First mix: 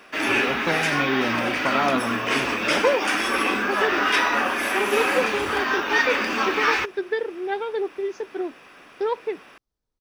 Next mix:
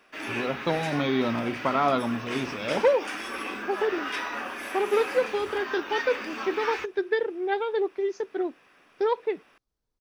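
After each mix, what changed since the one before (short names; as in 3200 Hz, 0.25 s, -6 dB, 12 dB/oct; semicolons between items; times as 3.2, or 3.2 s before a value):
background -11.5 dB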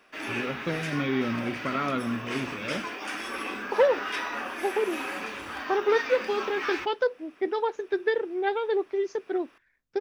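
first voice: add fixed phaser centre 2000 Hz, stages 4; second voice: entry +0.95 s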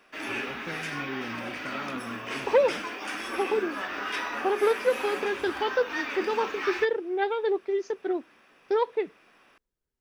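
first voice -9.5 dB; second voice: entry -1.25 s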